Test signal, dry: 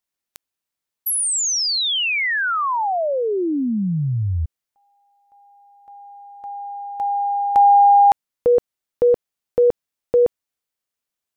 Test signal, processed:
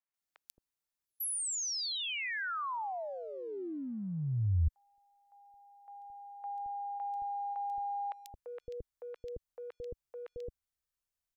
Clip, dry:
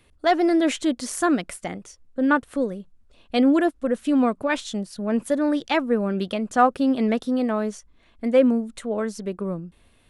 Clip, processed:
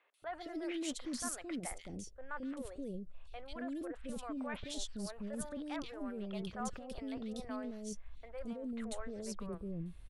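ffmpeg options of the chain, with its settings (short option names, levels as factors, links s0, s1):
-filter_complex "[0:a]asoftclip=type=hard:threshold=0.447,areverse,acompressor=threshold=0.0447:ratio=12:attack=0.39:release=59:knee=1:detection=peak,areverse,asubboost=boost=6:cutoff=88,acrossover=split=510|2700[s0][s1][s2];[s2]adelay=140[s3];[s0]adelay=220[s4];[s4][s1][s3]amix=inputs=3:normalize=0,volume=0.473"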